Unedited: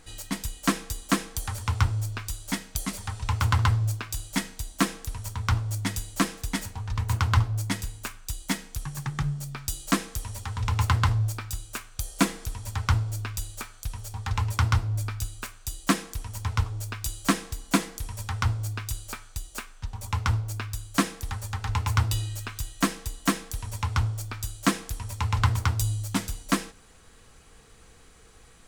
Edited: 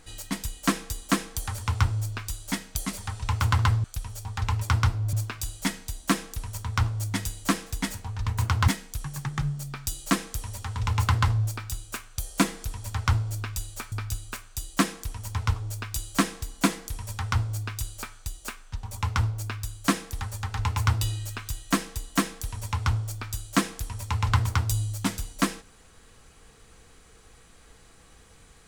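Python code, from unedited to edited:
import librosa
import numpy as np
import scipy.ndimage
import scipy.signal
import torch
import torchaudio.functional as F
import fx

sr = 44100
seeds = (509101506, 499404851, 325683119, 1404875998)

y = fx.edit(x, sr, fx.cut(start_s=7.39, length_s=1.1),
    fx.move(start_s=13.73, length_s=1.29, to_s=3.84), tone=tone)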